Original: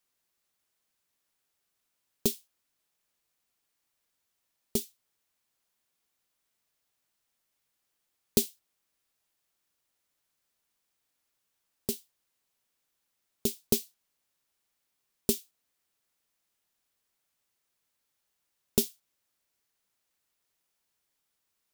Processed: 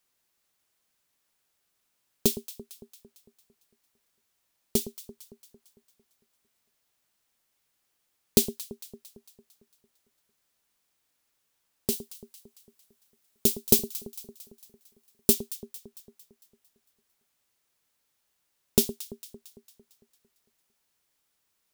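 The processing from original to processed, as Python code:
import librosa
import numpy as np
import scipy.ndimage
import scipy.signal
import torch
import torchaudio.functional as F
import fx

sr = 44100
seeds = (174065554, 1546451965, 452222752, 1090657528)

y = fx.high_shelf(x, sr, hz=fx.line((11.91, 4600.0), (15.33, 9500.0)), db=5.5, at=(11.91, 15.33), fade=0.02)
y = fx.echo_alternate(y, sr, ms=113, hz=1000.0, feedback_pct=72, wet_db=-13)
y = y * librosa.db_to_amplitude(4.0)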